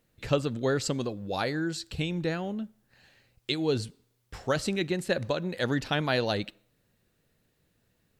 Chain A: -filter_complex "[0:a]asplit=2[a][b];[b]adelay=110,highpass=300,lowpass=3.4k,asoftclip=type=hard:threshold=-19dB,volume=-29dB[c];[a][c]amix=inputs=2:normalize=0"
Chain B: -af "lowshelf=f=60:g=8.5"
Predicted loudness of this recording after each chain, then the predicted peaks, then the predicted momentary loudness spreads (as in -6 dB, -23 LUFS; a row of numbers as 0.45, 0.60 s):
-30.0, -30.0 LUFS; -11.0, -10.5 dBFS; 11, 10 LU